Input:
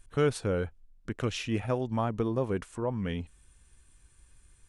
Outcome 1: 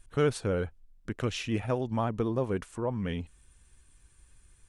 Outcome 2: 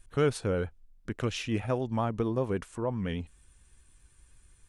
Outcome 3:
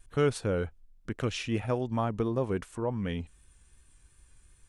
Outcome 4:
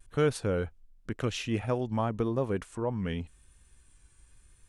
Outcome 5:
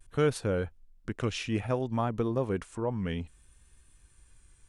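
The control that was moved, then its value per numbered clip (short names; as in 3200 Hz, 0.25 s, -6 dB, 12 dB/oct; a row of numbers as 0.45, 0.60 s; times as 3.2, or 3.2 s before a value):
vibrato, rate: 16, 9.5, 2.7, 0.92, 0.6 Hz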